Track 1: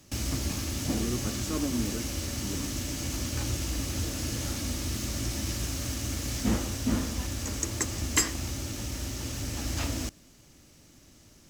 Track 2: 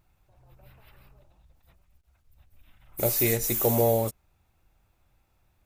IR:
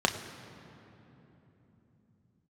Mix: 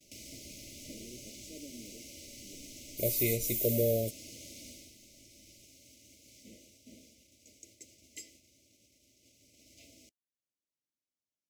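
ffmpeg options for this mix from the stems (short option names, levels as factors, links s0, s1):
-filter_complex "[0:a]highpass=f=430:p=1,acompressor=mode=upward:threshold=0.0178:ratio=2.5,volume=0.237,afade=t=out:st=4.68:d=0.27:silence=0.354813[s0];[1:a]volume=0.531[s1];[s0][s1]amix=inputs=2:normalize=0,afftfilt=real='re*(1-between(b*sr/4096,680,2000))':imag='im*(1-between(b*sr/4096,680,2000))':win_size=4096:overlap=0.75,agate=range=0.0251:threshold=0.00112:ratio=16:detection=peak"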